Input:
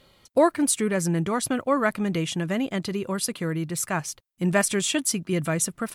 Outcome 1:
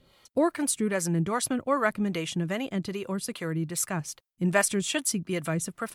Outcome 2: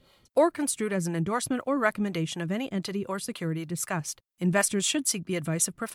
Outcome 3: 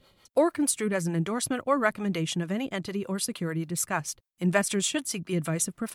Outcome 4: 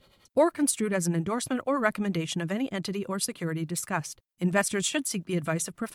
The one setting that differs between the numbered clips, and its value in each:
harmonic tremolo, rate: 2.5, 4, 6.7, 11 Hz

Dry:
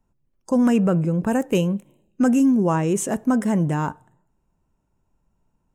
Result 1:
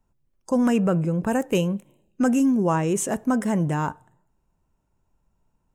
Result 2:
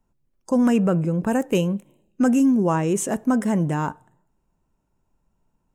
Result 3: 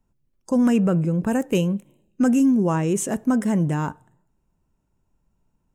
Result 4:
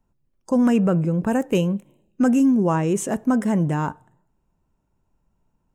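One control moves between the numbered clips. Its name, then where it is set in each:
bell, frequency: 230, 87, 840, 11000 Hz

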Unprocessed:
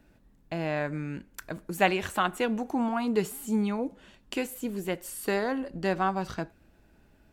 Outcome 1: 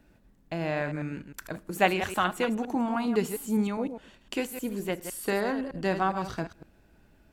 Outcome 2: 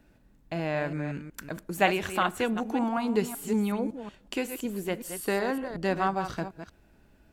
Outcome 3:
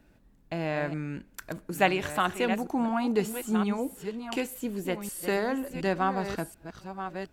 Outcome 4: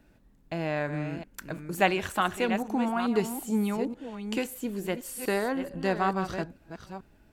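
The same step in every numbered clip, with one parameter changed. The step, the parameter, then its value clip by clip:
reverse delay, time: 0.102, 0.186, 0.727, 0.438 s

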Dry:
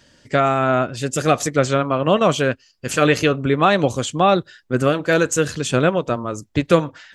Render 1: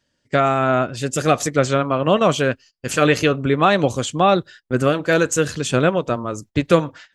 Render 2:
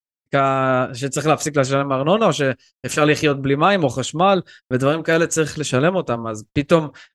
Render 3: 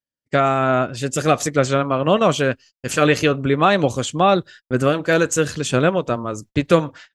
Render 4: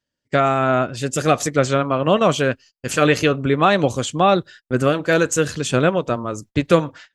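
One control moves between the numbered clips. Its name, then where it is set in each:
gate, range: -17, -56, -43, -29 dB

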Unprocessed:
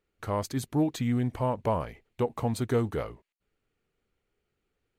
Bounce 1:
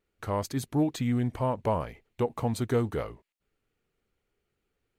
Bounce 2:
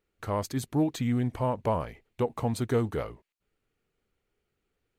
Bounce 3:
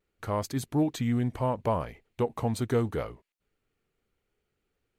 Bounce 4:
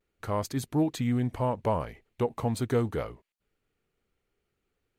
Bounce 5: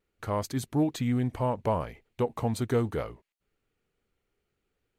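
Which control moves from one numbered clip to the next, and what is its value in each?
vibrato, rate: 2.2, 14, 0.72, 0.4, 1.1 Hz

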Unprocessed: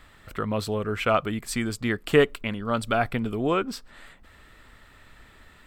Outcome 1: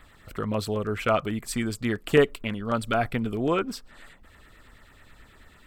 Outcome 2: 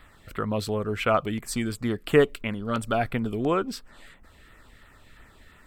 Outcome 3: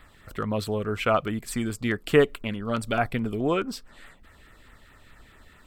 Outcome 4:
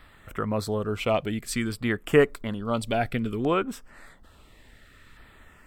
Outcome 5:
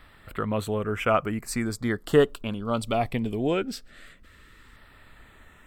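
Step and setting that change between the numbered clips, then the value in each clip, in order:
LFO notch, rate: 9.2, 2.9, 4.7, 0.58, 0.21 Hz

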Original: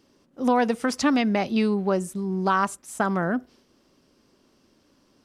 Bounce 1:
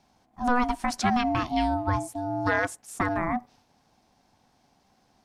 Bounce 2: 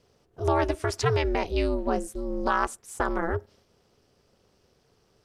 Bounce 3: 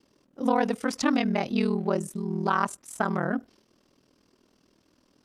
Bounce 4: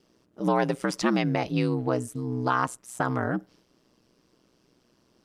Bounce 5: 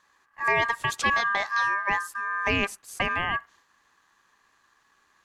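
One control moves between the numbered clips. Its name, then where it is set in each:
ring modulator, frequency: 490, 160, 20, 62, 1400 Hz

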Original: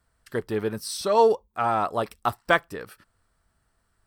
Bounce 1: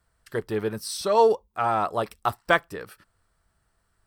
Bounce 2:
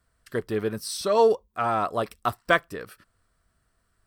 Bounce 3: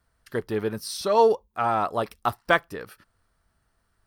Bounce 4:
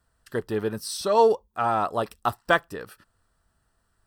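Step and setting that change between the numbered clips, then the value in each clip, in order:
notch, frequency: 250, 860, 7900, 2200 Hz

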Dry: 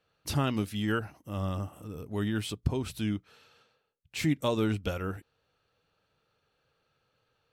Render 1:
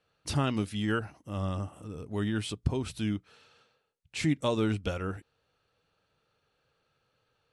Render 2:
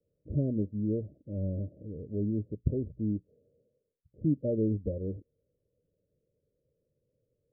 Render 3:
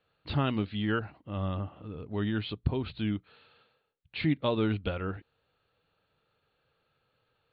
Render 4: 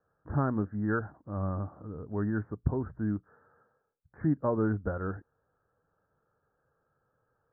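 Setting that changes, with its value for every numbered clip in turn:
steep low-pass, frequency: 11000, 600, 4400, 1700 Hz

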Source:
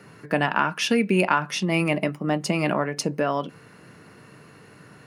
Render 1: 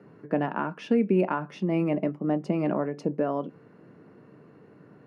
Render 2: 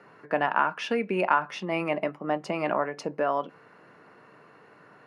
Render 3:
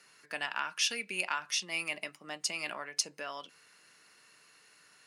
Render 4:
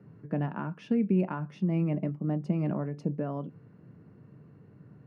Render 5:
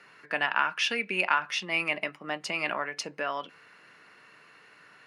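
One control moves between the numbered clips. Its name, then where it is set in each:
band-pass, frequency: 320, 860, 6400, 120, 2300 Hz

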